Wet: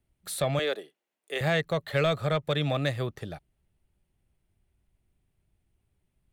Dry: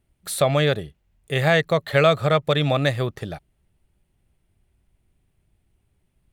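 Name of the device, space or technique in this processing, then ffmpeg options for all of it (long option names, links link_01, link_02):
one-band saturation: -filter_complex "[0:a]acrossover=split=330|2300[link_01][link_02][link_03];[link_02]asoftclip=type=tanh:threshold=-15dB[link_04];[link_01][link_04][link_03]amix=inputs=3:normalize=0,asettb=1/sr,asplit=3[link_05][link_06][link_07];[link_05]atrim=end=0.594[link_08];[link_06]atrim=start=0.59:end=1.41,asetpts=PTS-STARTPTS,afade=type=in:duration=0.004:curve=qsin,afade=type=out:start_time=0.816:duration=0.004:curve=qsin,highpass=frequency=310:width=0.5412,highpass=frequency=310:width=1.3066[link_09];[link_07]atrim=start=1.406[link_10];[link_08][link_09]acrossfade=duration=0.004:curve1=hsin:curve2=qsin[link_11];[link_11][link_10]acrossfade=duration=0.004:curve1=qsin:curve2=hsin,volume=-6.5dB"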